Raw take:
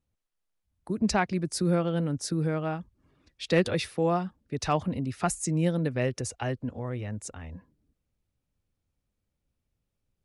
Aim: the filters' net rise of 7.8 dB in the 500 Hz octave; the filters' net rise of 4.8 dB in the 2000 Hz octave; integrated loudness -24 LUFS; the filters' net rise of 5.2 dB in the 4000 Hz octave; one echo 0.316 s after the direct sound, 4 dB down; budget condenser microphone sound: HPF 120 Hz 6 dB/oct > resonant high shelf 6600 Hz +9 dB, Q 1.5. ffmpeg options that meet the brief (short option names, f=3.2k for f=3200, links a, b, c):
-af "highpass=f=120:p=1,equalizer=f=500:t=o:g=9,equalizer=f=2k:t=o:g=4.5,equalizer=f=4k:t=o:g=7.5,highshelf=f=6.6k:t=q:w=1.5:g=9,aecho=1:1:316:0.631,volume=-1dB"